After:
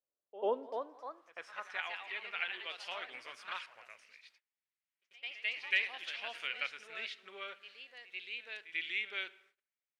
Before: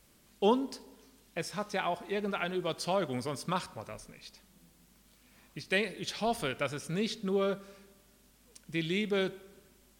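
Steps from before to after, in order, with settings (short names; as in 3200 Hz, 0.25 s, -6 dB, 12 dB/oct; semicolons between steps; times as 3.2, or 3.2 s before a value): echoes that change speed 0.344 s, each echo +2 st, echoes 2, each echo -6 dB; dynamic EQ 2900 Hz, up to +7 dB, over -52 dBFS, Q 2.5; gate -53 dBFS, range -25 dB; bell 170 Hz -13 dB 1.1 oct; on a send: reverse echo 92 ms -16.5 dB; on the sum: band-pass sweep 570 Hz -> 2100 Hz, 0.58–1.93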